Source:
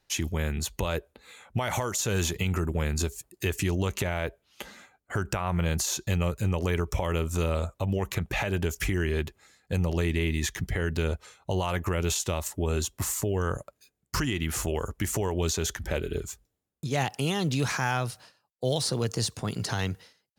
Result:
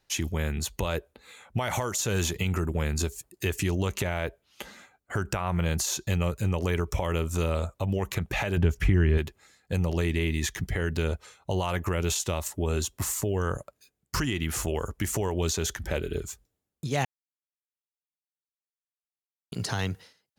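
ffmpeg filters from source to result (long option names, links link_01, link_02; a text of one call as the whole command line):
ffmpeg -i in.wav -filter_complex "[0:a]asettb=1/sr,asplit=3[link_01][link_02][link_03];[link_01]atrim=end=8.574[link_04];[link_02]atrim=start=8.57:end=9.18,asetpts=PTS-STARTPTS,afade=type=in:duration=0.004:curve=qsin,afade=type=out:start_time=0.606:duration=0.004:curve=qsin,bass=frequency=250:gain=8,treble=frequency=4000:gain=-13[link_05];[link_03]atrim=start=9.176[link_06];[link_04][link_05]acrossfade=duration=0.004:curve1=hsin:curve2=qsin[link_07];[link_07][link_06]acrossfade=duration=0.004:curve1=qsin:curve2=hsin,asplit=3[link_08][link_09][link_10];[link_08]atrim=end=17.05,asetpts=PTS-STARTPTS,afade=type=out:start_time=17.046:duration=0.004:curve=hsin[link_11];[link_09]atrim=start=17.05:end=19.52,asetpts=PTS-STARTPTS,volume=0[link_12];[link_10]atrim=start=19.52,asetpts=PTS-STARTPTS,afade=type=in:duration=0.004:curve=hsin[link_13];[link_11][link_12][link_13]concat=n=3:v=0:a=1" out.wav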